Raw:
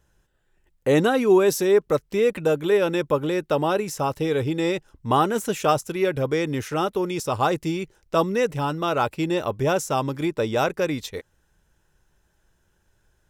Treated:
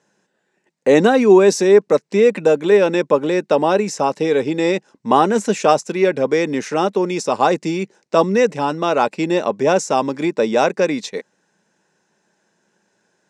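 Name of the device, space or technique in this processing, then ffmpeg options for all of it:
television speaker: -af "highpass=f=200:w=0.5412,highpass=f=200:w=1.3066,equalizer=f=200:t=q:w=4:g=5,equalizer=f=320:t=q:w=4:g=-3,equalizer=f=1.3k:t=q:w=4:g=-6,equalizer=f=3.2k:t=q:w=4:g=-7,lowpass=f=7.7k:w=0.5412,lowpass=f=7.7k:w=1.3066,volume=7.5dB"

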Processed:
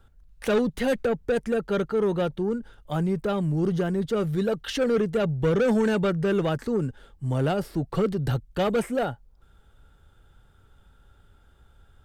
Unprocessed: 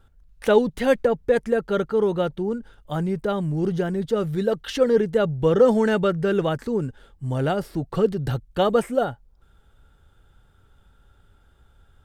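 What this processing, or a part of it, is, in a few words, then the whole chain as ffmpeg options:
one-band saturation: -filter_complex "[0:a]acrossover=split=240|4000[a][b][c];[b]asoftclip=type=tanh:threshold=-20.5dB[d];[a][d][c]amix=inputs=3:normalize=0"

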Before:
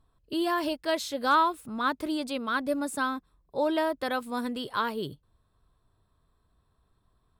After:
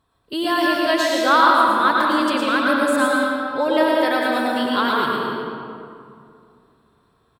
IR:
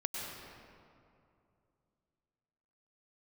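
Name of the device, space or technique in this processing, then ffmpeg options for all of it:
PA in a hall: -filter_complex "[0:a]highpass=f=190:p=1,equalizer=f=2.2k:t=o:w=1.9:g=4,aecho=1:1:114:0.562[a];[1:a]atrim=start_sample=2205[b];[a][b]afir=irnorm=-1:irlink=0,volume=6dB"

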